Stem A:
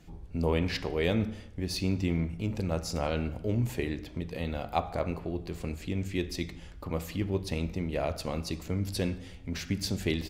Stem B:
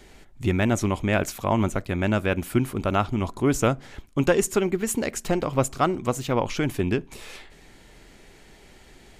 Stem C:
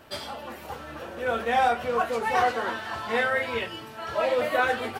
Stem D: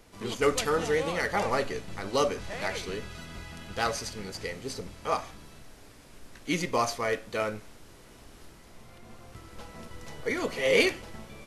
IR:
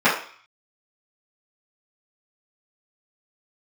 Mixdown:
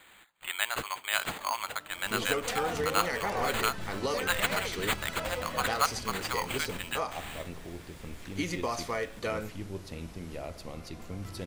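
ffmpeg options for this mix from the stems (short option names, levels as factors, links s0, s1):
-filter_complex "[0:a]adelay=2400,volume=0.355[s0];[1:a]highpass=f=1000:w=0.5412,highpass=f=1000:w=1.3066,acrusher=samples=8:mix=1:aa=0.000001,volume=0.944,asplit=2[s1][s2];[2:a]flanger=delay=15.5:depth=5:speed=1.8,adelay=1000,volume=0.282[s3];[3:a]acompressor=threshold=0.0316:ratio=6,adelay=1900,volume=1.12[s4];[s2]apad=whole_len=559662[s5];[s0][s5]sidechaincompress=threshold=0.0112:ratio=8:attack=16:release=373[s6];[s6][s1][s3][s4]amix=inputs=4:normalize=0"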